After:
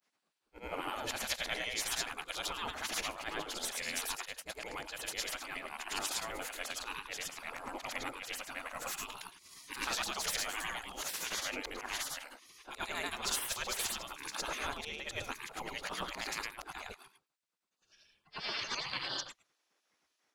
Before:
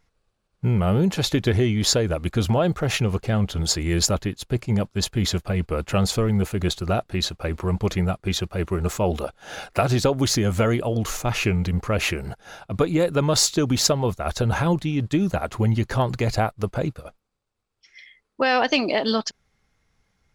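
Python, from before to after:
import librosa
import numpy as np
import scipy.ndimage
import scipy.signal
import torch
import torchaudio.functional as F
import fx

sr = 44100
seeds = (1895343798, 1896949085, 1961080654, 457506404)

y = fx.frame_reverse(x, sr, frame_ms=223.0)
y = fx.spec_gate(y, sr, threshold_db=-20, keep='weak')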